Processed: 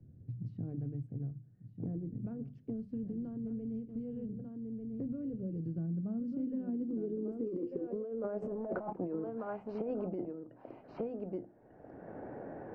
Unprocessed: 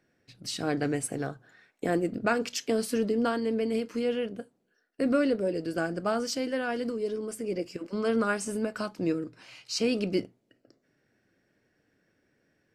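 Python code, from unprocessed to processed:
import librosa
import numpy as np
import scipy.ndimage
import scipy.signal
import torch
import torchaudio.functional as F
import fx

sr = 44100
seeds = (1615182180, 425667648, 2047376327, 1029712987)

y = fx.hum_notches(x, sr, base_hz=50, count=7)
y = y + 10.0 ** (-13.5 / 20.0) * np.pad(y, (int(1194 * sr / 1000.0), 0))[:len(y)]
y = fx.leveller(y, sr, passes=3, at=(8.42, 8.93))
y = fx.filter_sweep_lowpass(y, sr, from_hz=100.0, to_hz=800.0, start_s=5.11, end_s=8.94, q=3.1)
y = fx.over_compress(y, sr, threshold_db=-28.0, ratio=-1.0)
y = fx.lowpass(y, sr, hz=1200.0, slope=6, at=(1.12, 2.15))
y = fx.band_squash(y, sr, depth_pct=100)
y = y * librosa.db_to_amplitude(-7.5)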